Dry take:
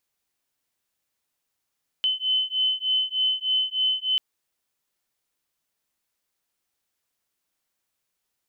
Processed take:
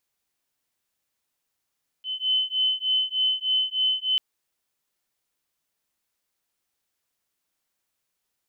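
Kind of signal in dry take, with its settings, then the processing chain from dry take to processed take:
two tones that beat 3,040 Hz, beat 3.3 Hz, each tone −24.5 dBFS 2.14 s
volume swells 132 ms

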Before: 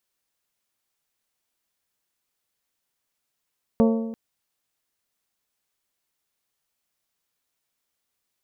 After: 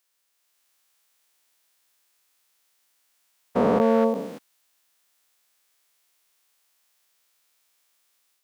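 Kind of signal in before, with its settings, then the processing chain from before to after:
struck metal bell, length 0.34 s, lowest mode 226 Hz, modes 6, decay 1.07 s, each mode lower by 4.5 dB, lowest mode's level −14 dB
every bin's largest magnitude spread in time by 480 ms
high-pass filter 800 Hz 6 dB per octave
automatic gain control gain up to 5 dB

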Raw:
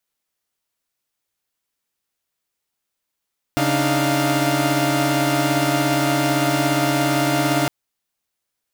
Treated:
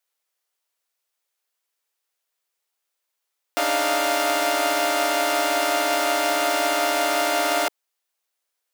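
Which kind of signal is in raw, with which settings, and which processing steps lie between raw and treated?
held notes C#3/D4/D#4/F5 saw, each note −20 dBFS 4.11 s
high-pass filter 410 Hz 24 dB per octave

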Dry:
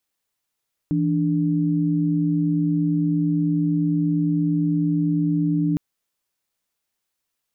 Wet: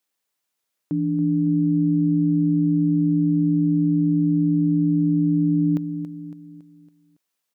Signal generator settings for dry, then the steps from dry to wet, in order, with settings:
held notes E3/D4 sine, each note −20.5 dBFS 4.86 s
high-pass filter 170 Hz
on a send: repeating echo 279 ms, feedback 47%, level −10.5 dB

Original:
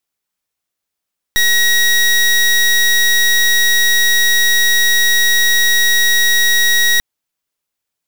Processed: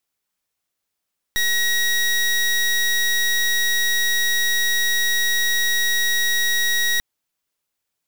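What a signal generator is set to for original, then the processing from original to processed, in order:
pulse wave 1,900 Hz, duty 23% −11.5 dBFS 5.64 s
soft clipping −19 dBFS

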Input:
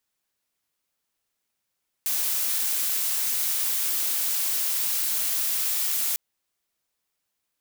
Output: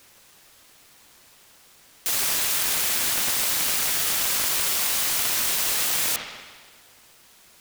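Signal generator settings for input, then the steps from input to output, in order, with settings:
noise blue, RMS −25.5 dBFS 4.10 s
spring reverb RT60 1.5 s, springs 59 ms, chirp 45 ms, DRR −2 dB
in parallel at −4 dB: bit-depth reduction 8 bits, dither triangular
on the sum: short delay modulated by noise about 1,300 Hz, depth 0.039 ms

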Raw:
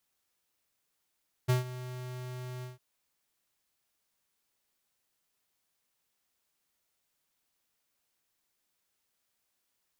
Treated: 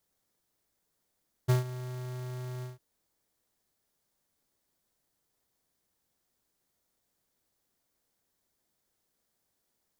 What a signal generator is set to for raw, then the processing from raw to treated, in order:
note with an ADSR envelope square 126 Hz, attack 19 ms, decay 136 ms, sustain −16.5 dB, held 1.15 s, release 152 ms −24 dBFS
parametric band 2,600 Hz −6.5 dB 0.66 octaves
in parallel at −9 dB: sample-rate reduction 1,400 Hz

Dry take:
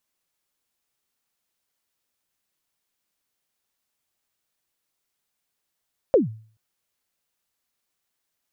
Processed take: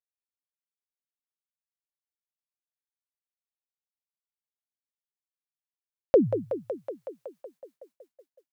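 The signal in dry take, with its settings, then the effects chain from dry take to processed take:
synth kick length 0.43 s, from 590 Hz, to 110 Hz, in 144 ms, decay 0.45 s, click off, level −9.5 dB
on a send: feedback echo with a high-pass in the loop 186 ms, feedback 85%, high-pass 290 Hz, level −8 dB
on the sum: downward expander −50 dBFS

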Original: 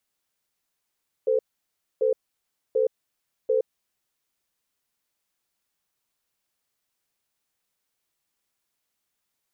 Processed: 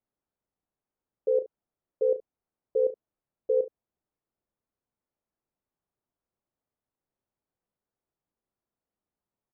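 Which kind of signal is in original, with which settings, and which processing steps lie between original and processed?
tone pair in a cadence 444 Hz, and 513 Hz, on 0.12 s, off 0.62 s, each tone −21.5 dBFS 2.46 s
Bessel low-pass filter 660 Hz, order 2
ambience of single reflections 35 ms −10 dB, 72 ms −17 dB

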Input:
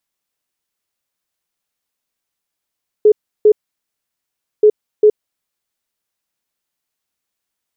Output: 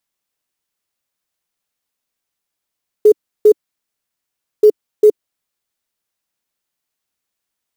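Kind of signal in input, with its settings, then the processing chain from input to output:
beeps in groups sine 424 Hz, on 0.07 s, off 0.33 s, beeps 2, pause 1.11 s, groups 2, −4.5 dBFS
dynamic equaliser 320 Hz, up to +4 dB, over −23 dBFS, Q 2.6
floating-point word with a short mantissa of 4 bits

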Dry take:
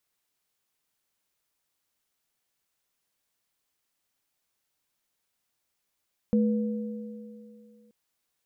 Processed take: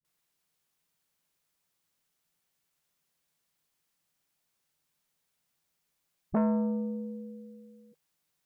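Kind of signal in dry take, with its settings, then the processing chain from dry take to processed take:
inharmonic partials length 1.58 s, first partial 216 Hz, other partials 486 Hz, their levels −8 dB, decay 2.43 s, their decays 2.73 s, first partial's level −19 dB
parametric band 160 Hz +11 dB 0.3 octaves
all-pass dispersion highs, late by 48 ms, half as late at 320 Hz
saturating transformer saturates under 530 Hz

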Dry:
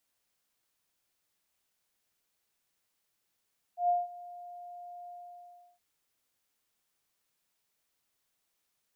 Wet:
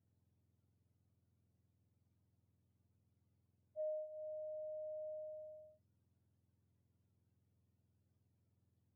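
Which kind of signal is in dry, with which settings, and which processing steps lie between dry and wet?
note with an ADSR envelope sine 706 Hz, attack 118 ms, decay 185 ms, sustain −20.5 dB, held 1.32 s, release 700 ms −22.5 dBFS
frequency axis turned over on the octave scale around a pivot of 660 Hz
mains-hum notches 50/100/150 Hz
downward compressor 6 to 1, threshold −42 dBFS

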